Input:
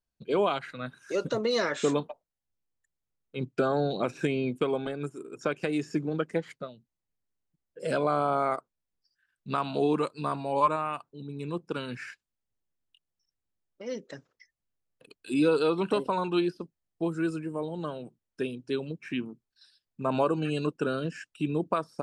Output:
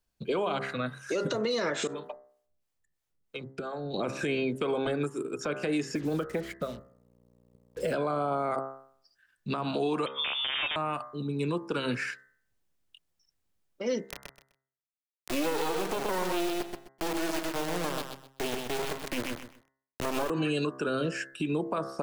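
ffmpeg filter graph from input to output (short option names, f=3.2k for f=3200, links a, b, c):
-filter_complex "[0:a]asettb=1/sr,asplit=3[a][b][c];[a]atrim=end=1.874[d];[b]atrim=start=1.87:end=3.94,asetpts=PTS-STARTPTS,afade=t=in:d=0.004:c=qsin,afade=t=out:st=2.066:d=0.004:c=qsin,acompressor=threshold=-36dB:ratio=12:attack=3.2:release=140:knee=1:detection=peak,acrossover=split=480[e][f];[e]aeval=exprs='val(0)*(1-0.7/2+0.7/2*cos(2*PI*3*n/s))':c=same[g];[f]aeval=exprs='val(0)*(1-0.7/2-0.7/2*cos(2*PI*3*n/s))':c=same[h];[g][h]amix=inputs=2:normalize=0[i];[c]atrim=start=3.936[j];[d][i]acrossfade=d=0.004:c1=hsin:c2=qsin[k];[k][j]acrossfade=d=0.004:c1=qsin:c2=hsin,asettb=1/sr,asplit=3[l][m][n];[l]atrim=end=5.954[o];[m]atrim=start=5.95:end=7.94,asetpts=PTS-STARTPTS,afade=t=in:d=0.004:c=qsin,afade=t=out:st=1.986:d=0.004:c=qsin,acrossover=split=820|2600[p][q][r];[p]acompressor=threshold=-31dB:ratio=4[s];[q]acompressor=threshold=-44dB:ratio=4[t];[r]acompressor=threshold=-57dB:ratio=4[u];[s][t][u]amix=inputs=3:normalize=0,aeval=exprs='val(0)+0.001*(sin(2*PI*60*n/s)+sin(2*PI*2*60*n/s)/2+sin(2*PI*3*60*n/s)/3+sin(2*PI*4*60*n/s)/4+sin(2*PI*5*60*n/s)/5)':c=same,acrusher=bits=8:mix=0:aa=0.5[v];[n]atrim=start=7.936[w];[o][v]acrossfade=d=0.004:c1=hsin:c2=qsin[x];[x][w]acrossfade=d=0.004:c1=qsin:c2=hsin,asettb=1/sr,asplit=3[y][z][aa];[y]atrim=end=10.064[ab];[z]atrim=start=10.06:end=10.76,asetpts=PTS-STARTPTS,afade=t=in:d=0.004:c=qsin,afade=t=out:st=0.696:d=0.004:c=qsin,acompressor=threshold=-32dB:ratio=4:attack=3.2:release=140:knee=1:detection=peak,aeval=exprs='(mod(23.7*val(0)+1,2)-1)/23.7':c=same,lowpass=f=3.1k:t=q:w=0.5098,lowpass=f=3.1k:t=q:w=0.6013,lowpass=f=3.1k:t=q:w=0.9,lowpass=f=3.1k:t=q:w=2.563,afreqshift=-3700[ac];[aa]atrim=start=10.756[ad];[ab][ac]acrossfade=d=0.004:c1=hsin:c2=qsin[ae];[ae][ad]acrossfade=d=0.004:c1=qsin:c2=hsin,asettb=1/sr,asplit=3[af][ag][ah];[af]atrim=end=14.094[ai];[ag]atrim=start=14.09:end=20.3,asetpts=PTS-STARTPTS,afade=t=in:d=0.004:c=qsin,afade=t=out:st=6.206:d=0.004:c=qsin,lowpass=5.1k,acrusher=bits=3:dc=4:mix=0:aa=0.000001,aecho=1:1:127|254|381:0.422|0.097|0.0223,atrim=end_sample=273861[aj];[ah]atrim=start=20.296[ak];[ai][aj]acrossfade=d=0.004:c1=hsin:c2=qsin[al];[al][ak]acrossfade=d=0.004:c1=qsin:c2=hsin,bandreject=f=66.93:t=h:w=4,bandreject=f=133.86:t=h:w=4,bandreject=f=200.79:t=h:w=4,bandreject=f=267.72:t=h:w=4,bandreject=f=334.65:t=h:w=4,bandreject=f=401.58:t=h:w=4,bandreject=f=468.51:t=h:w=4,bandreject=f=535.44:t=h:w=4,bandreject=f=602.37:t=h:w=4,bandreject=f=669.3:t=h:w=4,bandreject=f=736.23:t=h:w=4,bandreject=f=803.16:t=h:w=4,bandreject=f=870.09:t=h:w=4,bandreject=f=937.02:t=h:w=4,bandreject=f=1.00395k:t=h:w=4,bandreject=f=1.07088k:t=h:w=4,bandreject=f=1.13781k:t=h:w=4,bandreject=f=1.20474k:t=h:w=4,bandreject=f=1.27167k:t=h:w=4,bandreject=f=1.3386k:t=h:w=4,bandreject=f=1.40553k:t=h:w=4,bandreject=f=1.47246k:t=h:w=4,bandreject=f=1.53939k:t=h:w=4,bandreject=f=1.60632k:t=h:w=4,bandreject=f=1.67325k:t=h:w=4,bandreject=f=1.74018k:t=h:w=4,bandreject=f=1.80711k:t=h:w=4,bandreject=f=1.87404k:t=h:w=4,bandreject=f=1.94097k:t=h:w=4,bandreject=f=2.0079k:t=h:w=4,bandreject=f=2.07483k:t=h:w=4,acrossover=split=270|710[am][an][ao];[am]acompressor=threshold=-41dB:ratio=4[ap];[an]acompressor=threshold=-33dB:ratio=4[aq];[ao]acompressor=threshold=-36dB:ratio=4[ar];[ap][aq][ar]amix=inputs=3:normalize=0,alimiter=level_in=5dB:limit=-24dB:level=0:latency=1:release=81,volume=-5dB,volume=8dB"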